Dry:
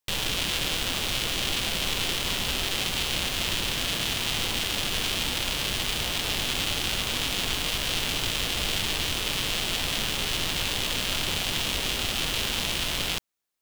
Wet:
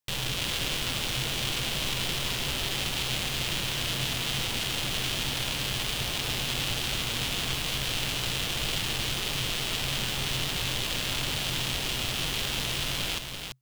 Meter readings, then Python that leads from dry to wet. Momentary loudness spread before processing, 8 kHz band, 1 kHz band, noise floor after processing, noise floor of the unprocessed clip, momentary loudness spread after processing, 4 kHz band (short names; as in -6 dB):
1 LU, -2.5 dB, -2.5 dB, -32 dBFS, -30 dBFS, 1 LU, -2.5 dB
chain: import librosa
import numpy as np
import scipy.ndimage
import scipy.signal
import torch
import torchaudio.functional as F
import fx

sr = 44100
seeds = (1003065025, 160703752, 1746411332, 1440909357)

y = fx.peak_eq(x, sr, hz=130.0, db=11.5, octaves=0.24)
y = y + 10.0 ** (-6.0 / 20.0) * np.pad(y, (int(337 * sr / 1000.0), 0))[:len(y)]
y = F.gain(torch.from_numpy(y), -3.5).numpy()